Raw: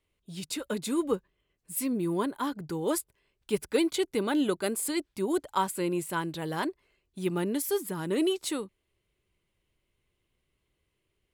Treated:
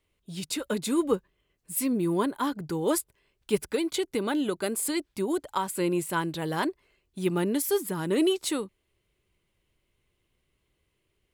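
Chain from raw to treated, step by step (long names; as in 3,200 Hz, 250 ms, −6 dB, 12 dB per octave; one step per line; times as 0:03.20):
0:03.64–0:05.72: downward compressor, threshold −27 dBFS, peak gain reduction 7 dB
level +3 dB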